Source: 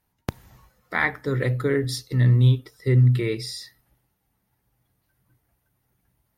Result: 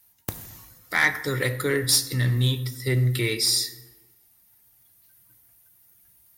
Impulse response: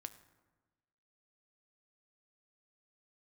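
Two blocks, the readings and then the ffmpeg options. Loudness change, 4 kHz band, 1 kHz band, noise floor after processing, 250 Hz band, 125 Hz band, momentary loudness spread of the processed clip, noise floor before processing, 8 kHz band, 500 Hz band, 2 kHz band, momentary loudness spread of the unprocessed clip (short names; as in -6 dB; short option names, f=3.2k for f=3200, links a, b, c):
-1.0 dB, +10.5 dB, -0.5 dB, -60 dBFS, -3.5 dB, -5.5 dB, 16 LU, -74 dBFS, +15.0 dB, -2.0 dB, +3.5 dB, 18 LU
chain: -filter_complex "[0:a]crystalizer=i=8:c=0,acontrast=74[a];[1:a]atrim=start_sample=2205[b];[a][b]afir=irnorm=-1:irlink=0,volume=-4.5dB"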